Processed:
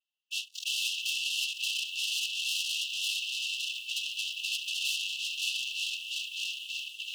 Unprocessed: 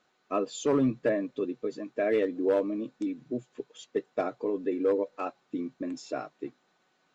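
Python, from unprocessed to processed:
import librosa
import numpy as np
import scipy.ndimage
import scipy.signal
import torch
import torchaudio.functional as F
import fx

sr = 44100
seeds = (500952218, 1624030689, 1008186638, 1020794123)

y = fx.wiener(x, sr, points=15)
y = fx.echo_swing(y, sr, ms=943, ratio=1.5, feedback_pct=42, wet_db=-3.0)
y = y * np.sin(2.0 * np.pi * 1000.0 * np.arange(len(y)) / sr)
y = fx.noise_vocoder(y, sr, seeds[0], bands=4)
y = y + 10.0 ** (-13.0 / 20.0) * np.pad(y, (int(337 * sr / 1000.0), 0))[:len(y)]
y = np.clip(10.0 ** (22.5 / 20.0) * y, -1.0, 1.0) / 10.0 ** (22.5 / 20.0)
y = scipy.signal.sosfilt(scipy.signal.butter(2, 4400.0, 'lowpass', fs=sr, output='sos'), y)
y = fx.leveller(y, sr, passes=3)
y = fx.brickwall_highpass(y, sr, low_hz=2600.0)
y = fx.end_taper(y, sr, db_per_s=280.0)
y = y * librosa.db_to_amplitude(3.0)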